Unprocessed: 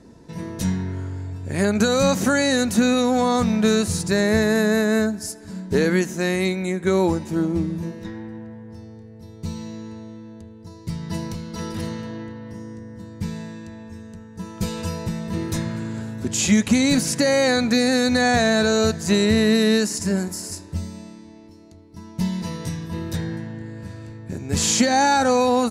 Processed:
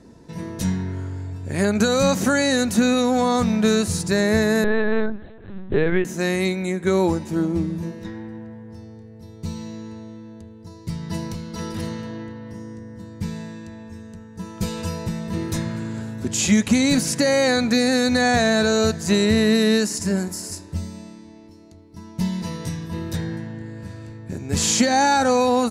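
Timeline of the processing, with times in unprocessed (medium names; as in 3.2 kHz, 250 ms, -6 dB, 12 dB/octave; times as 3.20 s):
4.64–6.05 s: LPC vocoder at 8 kHz pitch kept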